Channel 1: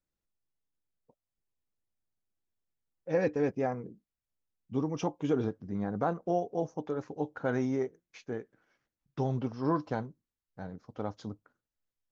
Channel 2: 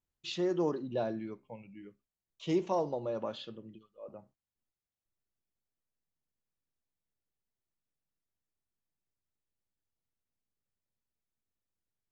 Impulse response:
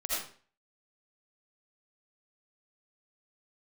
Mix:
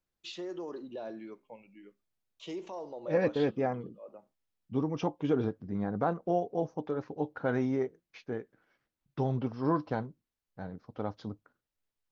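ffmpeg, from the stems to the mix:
-filter_complex "[0:a]lowpass=frequency=5000:width=0.5412,lowpass=frequency=5000:width=1.3066,volume=0.5dB[link_01];[1:a]highpass=280,alimiter=level_in=7dB:limit=-24dB:level=0:latency=1:release=113,volume=-7dB,volume=-1dB[link_02];[link_01][link_02]amix=inputs=2:normalize=0"

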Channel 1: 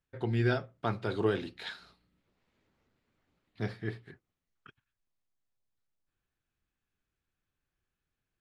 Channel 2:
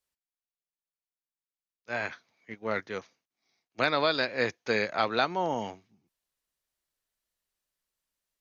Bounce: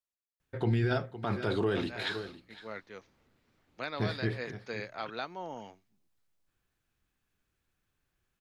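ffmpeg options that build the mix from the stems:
ffmpeg -i stem1.wav -i stem2.wav -filter_complex "[0:a]adelay=400,volume=0dB,asplit=2[link_01][link_02];[link_02]volume=-17dB[link_03];[1:a]volume=-17.5dB[link_04];[link_03]aecho=0:1:510:1[link_05];[link_01][link_04][link_05]amix=inputs=3:normalize=0,acontrast=49,alimiter=limit=-20.5dB:level=0:latency=1:release=32" out.wav

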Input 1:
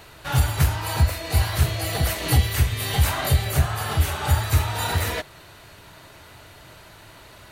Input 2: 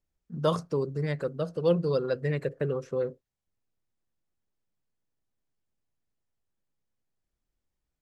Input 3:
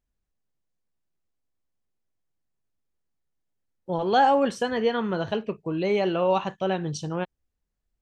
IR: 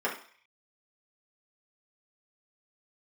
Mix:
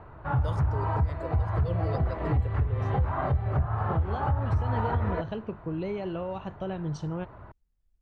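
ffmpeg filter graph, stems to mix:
-filter_complex "[0:a]lowpass=frequency=1100:width_type=q:width=1.7,lowshelf=frequency=64:gain=-10,volume=-4dB[link_01];[1:a]volume=-8.5dB[link_02];[2:a]acompressor=threshold=-26dB:ratio=6,volume=-6.5dB[link_03];[link_01][link_03]amix=inputs=2:normalize=0,aemphasis=mode=reproduction:type=bsi,alimiter=limit=-9.5dB:level=0:latency=1:release=229,volume=0dB[link_04];[link_02][link_04]amix=inputs=2:normalize=0,alimiter=limit=-18dB:level=0:latency=1:release=168"

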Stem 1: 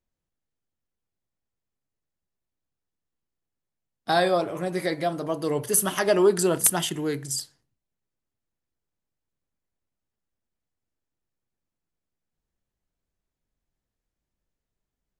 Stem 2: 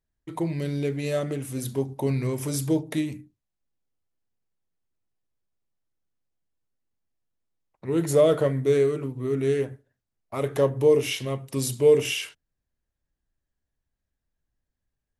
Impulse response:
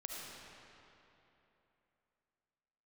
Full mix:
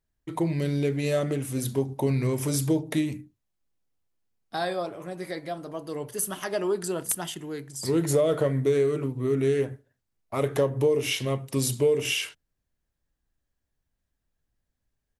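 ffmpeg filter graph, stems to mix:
-filter_complex "[0:a]adelay=450,volume=2.5dB[link_01];[1:a]volume=2dB,asplit=2[link_02][link_03];[link_03]apad=whole_len=690017[link_04];[link_01][link_04]sidechaingate=range=-10dB:threshold=-39dB:ratio=16:detection=peak[link_05];[link_05][link_02]amix=inputs=2:normalize=0,acompressor=threshold=-19dB:ratio=6"

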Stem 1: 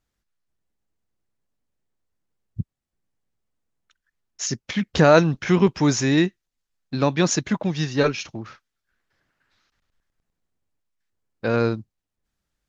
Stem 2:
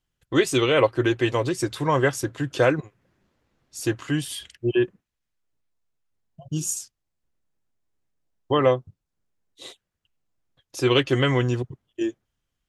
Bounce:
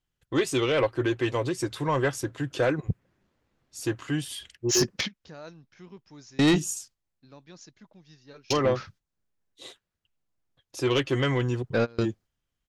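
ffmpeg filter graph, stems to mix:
ffmpeg -i stem1.wav -i stem2.wav -filter_complex "[0:a]adynamicequalizer=threshold=0.00631:dfrequency=4800:dqfactor=1.9:tfrequency=4800:tqfactor=1.9:attack=5:release=100:ratio=0.375:range=4:mode=boostabove:tftype=bell,adelay=300,volume=2dB[link_01];[1:a]highshelf=frequency=8100:gain=-3,volume=-3dB,asplit=2[link_02][link_03];[link_03]apad=whole_len=572630[link_04];[link_01][link_04]sidechaingate=range=-32dB:threshold=-51dB:ratio=16:detection=peak[link_05];[link_05][link_02]amix=inputs=2:normalize=0,asoftclip=type=tanh:threshold=-15.5dB" out.wav

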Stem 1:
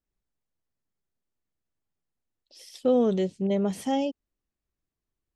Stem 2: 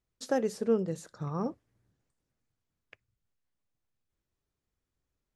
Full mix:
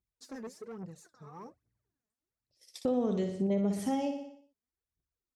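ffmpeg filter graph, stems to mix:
ffmpeg -i stem1.wav -i stem2.wav -filter_complex "[0:a]agate=range=-25dB:threshold=-46dB:ratio=16:detection=peak,aphaser=in_gain=1:out_gain=1:delay=1.2:decay=0.29:speed=0.85:type=triangular,volume=1.5dB,asplit=2[link_01][link_02];[link_02]volume=-7.5dB[link_03];[1:a]bandreject=frequency=550:width=12,aphaser=in_gain=1:out_gain=1:delay=4.9:decay=0.76:speed=1.2:type=triangular,asoftclip=type=tanh:threshold=-25.5dB,volume=-12.5dB[link_04];[link_03]aecho=0:1:60|120|180|240|300|360|420:1|0.48|0.23|0.111|0.0531|0.0255|0.0122[link_05];[link_01][link_04][link_05]amix=inputs=3:normalize=0,highpass=40,equalizer=frequency=3100:width=3.4:gain=-7,acompressor=threshold=-31dB:ratio=2.5" out.wav

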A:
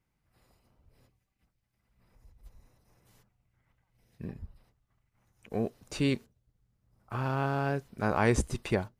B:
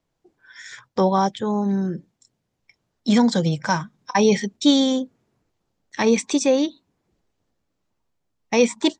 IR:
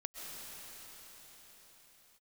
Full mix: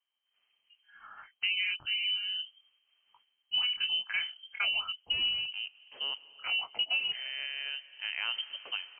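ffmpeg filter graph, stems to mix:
-filter_complex "[0:a]volume=-9.5dB,asplit=3[link_01][link_02][link_03];[link_02]volume=-12dB[link_04];[1:a]flanger=delay=17.5:depth=7.1:speed=1.1,adelay=450,volume=-5.5dB[link_05];[link_03]apad=whole_len=416411[link_06];[link_05][link_06]sidechaincompress=threshold=-47dB:ratio=8:attack=16:release=626[link_07];[2:a]atrim=start_sample=2205[link_08];[link_04][link_08]afir=irnorm=-1:irlink=0[link_09];[link_01][link_07][link_09]amix=inputs=3:normalize=0,lowpass=frequency=2700:width_type=q:width=0.5098,lowpass=frequency=2700:width_type=q:width=0.6013,lowpass=frequency=2700:width_type=q:width=0.9,lowpass=frequency=2700:width_type=q:width=2.563,afreqshift=-3200,acompressor=threshold=-27dB:ratio=10"

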